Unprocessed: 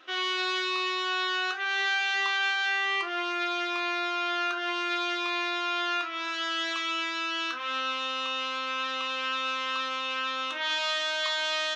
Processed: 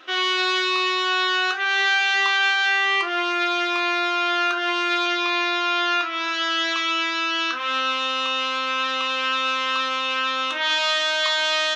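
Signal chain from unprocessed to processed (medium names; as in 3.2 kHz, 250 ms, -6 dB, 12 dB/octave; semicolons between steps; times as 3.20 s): 5.06–7.56 s: steep low-pass 7 kHz 48 dB/octave; trim +7.5 dB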